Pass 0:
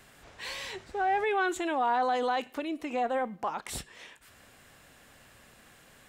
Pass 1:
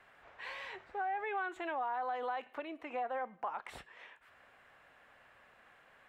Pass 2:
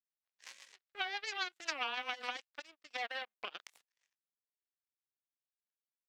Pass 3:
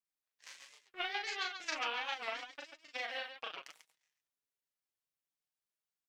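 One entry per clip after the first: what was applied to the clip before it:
three-way crossover with the lows and the highs turned down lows −14 dB, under 520 Hz, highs −22 dB, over 2,600 Hz; downward compressor 4 to 1, threshold −33 dBFS, peak gain reduction 8 dB; level −1.5 dB
power curve on the samples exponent 3; spectral tilt +4.5 dB per octave; rotating-speaker cabinet horn 7.5 Hz, later 1.2 Hz, at 0:02.05; level +8.5 dB
flanger 0.52 Hz, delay 6.2 ms, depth 1.5 ms, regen +35%; on a send: loudspeakers that aren't time-aligned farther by 13 metres −3 dB, 48 metres −8 dB; on the sum: wow of a warped record 45 rpm, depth 160 cents; level +2 dB

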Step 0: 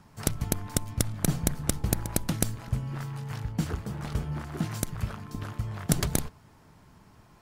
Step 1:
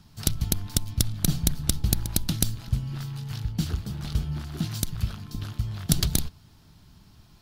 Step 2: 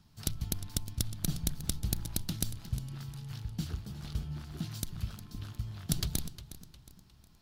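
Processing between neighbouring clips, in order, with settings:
octave-band graphic EQ 125/250/500/1,000/2,000/4,000/8,000 Hz −3/−4/−12/−9/−9/+6/−6 dB; level +6.5 dB
feedback echo with a swinging delay time 359 ms, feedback 40%, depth 97 cents, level −14.5 dB; level −9 dB

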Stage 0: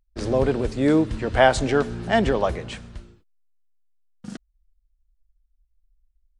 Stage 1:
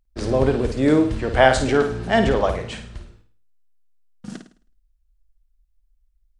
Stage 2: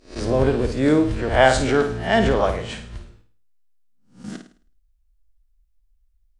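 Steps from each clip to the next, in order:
flutter between parallel walls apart 9.1 metres, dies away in 0.43 s; level +1.5 dB
peak hold with a rise ahead of every peak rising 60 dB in 0.35 s; level −1 dB

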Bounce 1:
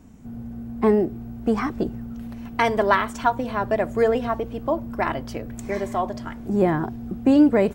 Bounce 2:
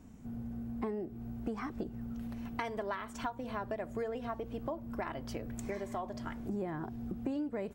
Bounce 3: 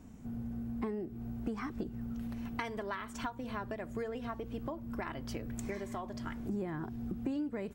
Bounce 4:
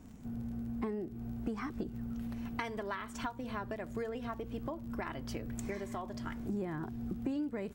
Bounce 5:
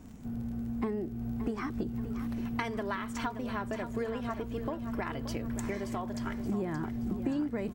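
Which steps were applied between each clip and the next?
downward compressor 6 to 1, threshold −29 dBFS, peak gain reduction 16.5 dB; level −6 dB
dynamic equaliser 660 Hz, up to −6 dB, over −51 dBFS, Q 1.2; level +1.5 dB
surface crackle 34 per second −49 dBFS
repeating echo 576 ms, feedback 45%, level −10.5 dB; level +3.5 dB

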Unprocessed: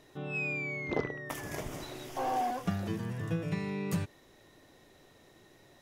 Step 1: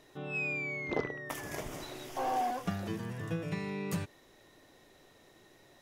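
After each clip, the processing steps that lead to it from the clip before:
parametric band 90 Hz −4 dB 3 octaves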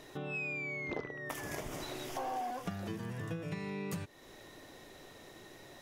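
downward compressor 3 to 1, threshold −47 dBFS, peak gain reduction 15.5 dB
level +7 dB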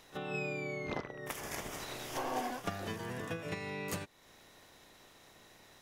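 ceiling on every frequency bin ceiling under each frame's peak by 12 dB
backwards echo 32 ms −10 dB
expander for the loud parts 1.5 to 1, over −51 dBFS
level +2 dB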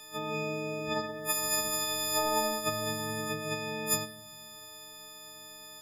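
every partial snapped to a pitch grid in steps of 6 semitones
convolution reverb RT60 1.5 s, pre-delay 7 ms, DRR 11 dB
level +1 dB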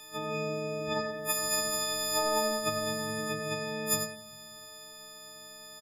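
single-tap delay 95 ms −8.5 dB

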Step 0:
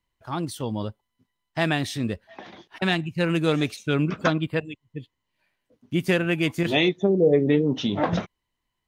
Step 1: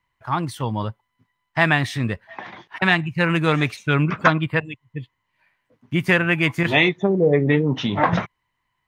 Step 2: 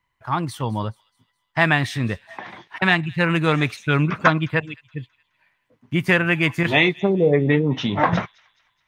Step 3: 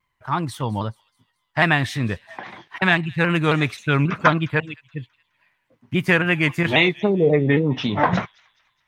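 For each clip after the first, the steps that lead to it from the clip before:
octave-band graphic EQ 125/1,000/2,000 Hz +9/+10/+10 dB; level −1.5 dB
delay with a high-pass on its return 211 ms, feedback 43%, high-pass 3,200 Hz, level −18 dB
pitch modulation by a square or saw wave saw down 3.7 Hz, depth 100 cents

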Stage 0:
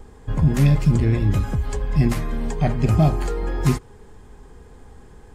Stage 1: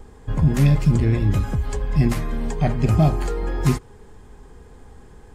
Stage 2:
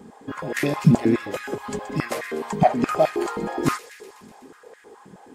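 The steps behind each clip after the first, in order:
no processing that can be heard
delay with a high-pass on its return 124 ms, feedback 70%, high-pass 2,100 Hz, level −13 dB; high-pass on a step sequencer 9.5 Hz 200–1,800 Hz

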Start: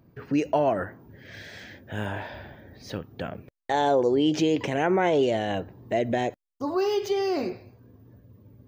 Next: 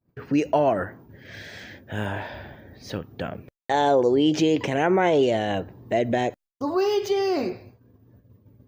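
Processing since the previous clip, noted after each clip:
downward expander −46 dBFS
level +2.5 dB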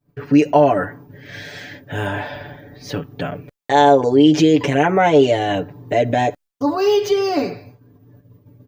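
comb filter 6.9 ms, depth 99%
level +3.5 dB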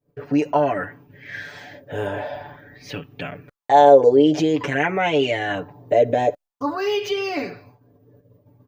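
auto-filter bell 0.49 Hz 480–2,700 Hz +13 dB
level −7.5 dB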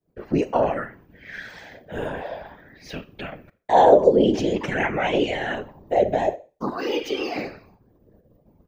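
four-comb reverb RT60 0.35 s, combs from 29 ms, DRR 14.5 dB
random phases in short frames
level −3 dB

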